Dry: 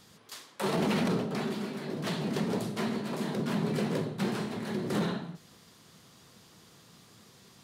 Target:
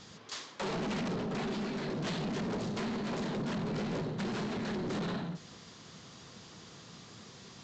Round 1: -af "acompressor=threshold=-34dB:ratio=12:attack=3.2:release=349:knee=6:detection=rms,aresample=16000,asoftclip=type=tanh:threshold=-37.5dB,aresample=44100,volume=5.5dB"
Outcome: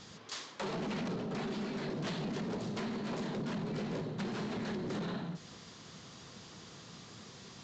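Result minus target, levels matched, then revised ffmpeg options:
compressor: peak gain reduction +6.5 dB
-af "acompressor=threshold=-27dB:ratio=12:attack=3.2:release=349:knee=6:detection=rms,aresample=16000,asoftclip=type=tanh:threshold=-37.5dB,aresample=44100,volume=5.5dB"

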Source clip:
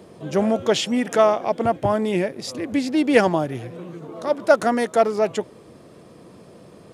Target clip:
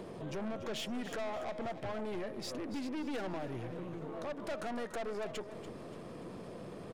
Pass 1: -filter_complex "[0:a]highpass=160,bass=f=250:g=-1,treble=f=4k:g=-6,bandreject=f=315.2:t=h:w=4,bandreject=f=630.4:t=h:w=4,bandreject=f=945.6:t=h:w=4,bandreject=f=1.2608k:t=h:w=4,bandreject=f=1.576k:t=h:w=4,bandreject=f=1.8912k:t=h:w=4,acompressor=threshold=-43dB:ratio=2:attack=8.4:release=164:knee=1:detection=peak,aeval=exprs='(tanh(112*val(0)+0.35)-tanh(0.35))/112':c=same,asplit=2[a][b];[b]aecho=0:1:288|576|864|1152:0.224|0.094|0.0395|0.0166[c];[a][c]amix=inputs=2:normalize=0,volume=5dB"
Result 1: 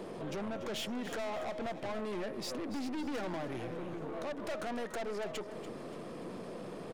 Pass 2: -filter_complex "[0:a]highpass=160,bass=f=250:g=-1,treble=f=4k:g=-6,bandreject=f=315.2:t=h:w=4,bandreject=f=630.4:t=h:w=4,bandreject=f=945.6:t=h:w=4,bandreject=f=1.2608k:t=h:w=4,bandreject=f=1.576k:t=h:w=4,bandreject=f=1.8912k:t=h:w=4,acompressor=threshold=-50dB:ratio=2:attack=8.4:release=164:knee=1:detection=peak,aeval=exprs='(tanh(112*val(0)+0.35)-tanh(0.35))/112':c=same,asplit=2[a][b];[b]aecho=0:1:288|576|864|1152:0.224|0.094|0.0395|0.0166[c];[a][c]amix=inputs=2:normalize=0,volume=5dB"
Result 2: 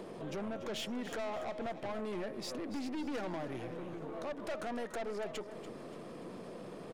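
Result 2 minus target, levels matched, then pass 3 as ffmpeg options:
125 Hz band -2.5 dB
-filter_complex "[0:a]bass=f=250:g=-1,treble=f=4k:g=-6,bandreject=f=315.2:t=h:w=4,bandreject=f=630.4:t=h:w=4,bandreject=f=945.6:t=h:w=4,bandreject=f=1.2608k:t=h:w=4,bandreject=f=1.576k:t=h:w=4,bandreject=f=1.8912k:t=h:w=4,acompressor=threshold=-50dB:ratio=2:attack=8.4:release=164:knee=1:detection=peak,aeval=exprs='(tanh(112*val(0)+0.35)-tanh(0.35))/112':c=same,asplit=2[a][b];[b]aecho=0:1:288|576|864|1152:0.224|0.094|0.0395|0.0166[c];[a][c]amix=inputs=2:normalize=0,volume=5dB"

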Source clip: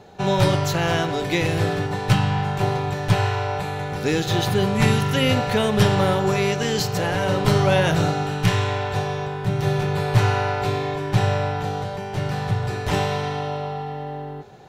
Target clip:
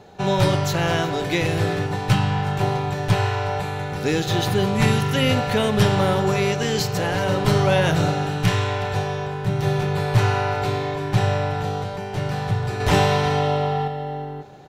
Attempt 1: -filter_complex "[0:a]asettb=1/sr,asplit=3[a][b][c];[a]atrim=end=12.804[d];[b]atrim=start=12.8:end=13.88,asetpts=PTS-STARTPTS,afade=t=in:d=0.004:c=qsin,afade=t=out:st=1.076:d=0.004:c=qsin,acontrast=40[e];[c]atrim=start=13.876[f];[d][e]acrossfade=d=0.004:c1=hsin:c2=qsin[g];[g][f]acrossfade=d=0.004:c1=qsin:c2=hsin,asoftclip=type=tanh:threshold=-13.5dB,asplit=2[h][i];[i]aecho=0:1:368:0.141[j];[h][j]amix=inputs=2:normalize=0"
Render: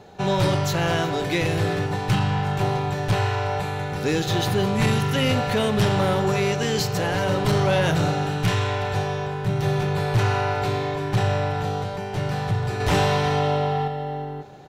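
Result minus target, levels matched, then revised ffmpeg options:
soft clip: distortion +17 dB
-filter_complex "[0:a]asettb=1/sr,asplit=3[a][b][c];[a]atrim=end=12.804[d];[b]atrim=start=12.8:end=13.88,asetpts=PTS-STARTPTS,afade=t=in:d=0.004:c=qsin,afade=t=out:st=1.076:d=0.004:c=qsin,acontrast=40[e];[c]atrim=start=13.876[f];[d][e]acrossfade=d=0.004:c1=hsin:c2=qsin[g];[g][f]acrossfade=d=0.004:c1=qsin:c2=hsin,asoftclip=type=tanh:threshold=-2dB,asplit=2[h][i];[i]aecho=0:1:368:0.141[j];[h][j]amix=inputs=2:normalize=0"

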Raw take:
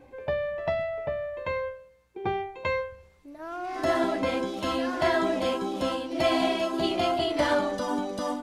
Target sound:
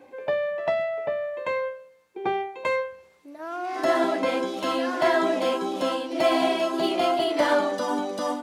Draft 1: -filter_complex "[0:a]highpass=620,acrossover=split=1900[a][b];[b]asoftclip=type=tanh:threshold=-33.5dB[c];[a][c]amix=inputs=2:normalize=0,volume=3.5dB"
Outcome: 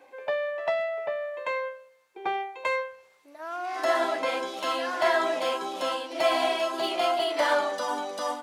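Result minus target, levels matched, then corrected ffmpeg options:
250 Hz band -8.0 dB
-filter_complex "[0:a]highpass=260,acrossover=split=1900[a][b];[b]asoftclip=type=tanh:threshold=-33.5dB[c];[a][c]amix=inputs=2:normalize=0,volume=3.5dB"

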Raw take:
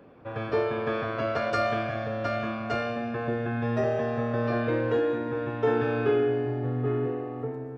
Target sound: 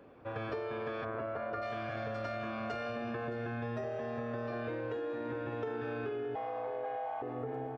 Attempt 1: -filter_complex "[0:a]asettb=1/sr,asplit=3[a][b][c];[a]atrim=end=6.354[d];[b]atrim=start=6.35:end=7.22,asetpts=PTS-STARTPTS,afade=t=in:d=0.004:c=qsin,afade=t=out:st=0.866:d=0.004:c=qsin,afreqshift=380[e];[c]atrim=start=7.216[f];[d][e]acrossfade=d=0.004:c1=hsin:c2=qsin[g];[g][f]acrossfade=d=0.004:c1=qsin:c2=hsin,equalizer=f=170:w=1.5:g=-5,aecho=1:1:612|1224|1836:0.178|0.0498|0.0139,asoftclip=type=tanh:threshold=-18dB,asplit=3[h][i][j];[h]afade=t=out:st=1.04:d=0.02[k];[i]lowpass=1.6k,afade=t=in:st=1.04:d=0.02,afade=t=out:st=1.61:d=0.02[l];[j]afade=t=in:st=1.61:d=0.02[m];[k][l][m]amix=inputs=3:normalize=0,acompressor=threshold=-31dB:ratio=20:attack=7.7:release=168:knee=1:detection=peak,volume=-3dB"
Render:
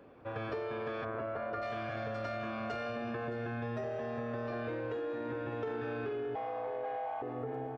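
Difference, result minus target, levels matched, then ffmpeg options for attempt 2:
soft clip: distortion +16 dB
-filter_complex "[0:a]asettb=1/sr,asplit=3[a][b][c];[a]atrim=end=6.354[d];[b]atrim=start=6.35:end=7.22,asetpts=PTS-STARTPTS,afade=t=in:d=0.004:c=qsin,afade=t=out:st=0.866:d=0.004:c=qsin,afreqshift=380[e];[c]atrim=start=7.216[f];[d][e]acrossfade=d=0.004:c1=hsin:c2=qsin[g];[g][f]acrossfade=d=0.004:c1=qsin:c2=hsin,equalizer=f=170:w=1.5:g=-5,aecho=1:1:612|1224|1836:0.178|0.0498|0.0139,asoftclip=type=tanh:threshold=-9dB,asplit=3[h][i][j];[h]afade=t=out:st=1.04:d=0.02[k];[i]lowpass=1.6k,afade=t=in:st=1.04:d=0.02,afade=t=out:st=1.61:d=0.02[l];[j]afade=t=in:st=1.61:d=0.02[m];[k][l][m]amix=inputs=3:normalize=0,acompressor=threshold=-31dB:ratio=20:attack=7.7:release=168:knee=1:detection=peak,volume=-3dB"

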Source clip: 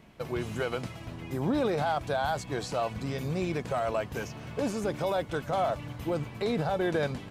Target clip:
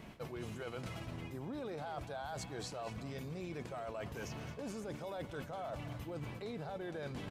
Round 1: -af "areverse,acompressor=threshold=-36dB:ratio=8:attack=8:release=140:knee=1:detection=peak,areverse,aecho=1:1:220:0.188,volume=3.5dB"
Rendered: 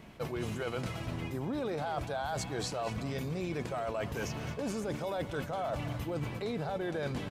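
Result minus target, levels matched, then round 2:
compressor: peak gain reduction -8 dB
-af "areverse,acompressor=threshold=-45dB:ratio=8:attack=8:release=140:knee=1:detection=peak,areverse,aecho=1:1:220:0.188,volume=3.5dB"

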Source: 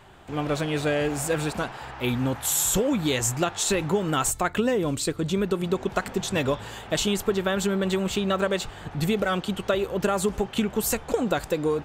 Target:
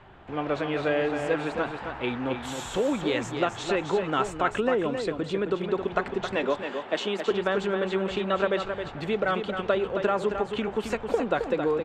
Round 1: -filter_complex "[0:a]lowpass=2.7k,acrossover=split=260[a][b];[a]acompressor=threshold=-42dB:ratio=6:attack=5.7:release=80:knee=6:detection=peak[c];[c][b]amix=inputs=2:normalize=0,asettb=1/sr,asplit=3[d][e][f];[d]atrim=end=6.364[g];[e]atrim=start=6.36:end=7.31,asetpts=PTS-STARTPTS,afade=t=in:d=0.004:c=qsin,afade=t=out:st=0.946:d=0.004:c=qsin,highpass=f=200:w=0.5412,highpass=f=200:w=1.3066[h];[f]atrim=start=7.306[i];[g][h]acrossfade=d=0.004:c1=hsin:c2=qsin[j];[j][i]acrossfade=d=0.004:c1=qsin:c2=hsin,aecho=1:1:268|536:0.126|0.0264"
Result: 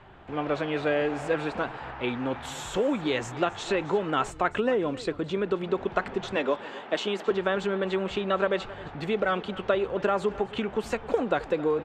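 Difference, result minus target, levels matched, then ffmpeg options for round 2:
echo-to-direct -10.5 dB
-filter_complex "[0:a]lowpass=2.7k,acrossover=split=260[a][b];[a]acompressor=threshold=-42dB:ratio=6:attack=5.7:release=80:knee=6:detection=peak[c];[c][b]amix=inputs=2:normalize=0,asettb=1/sr,asplit=3[d][e][f];[d]atrim=end=6.364[g];[e]atrim=start=6.36:end=7.31,asetpts=PTS-STARTPTS,afade=t=in:d=0.004:c=qsin,afade=t=out:st=0.946:d=0.004:c=qsin,highpass=f=200:w=0.5412,highpass=f=200:w=1.3066[h];[f]atrim=start=7.306[i];[g][h]acrossfade=d=0.004:c1=hsin:c2=qsin[j];[j][i]acrossfade=d=0.004:c1=qsin:c2=hsin,aecho=1:1:268|536|804:0.447|0.0938|0.0197"

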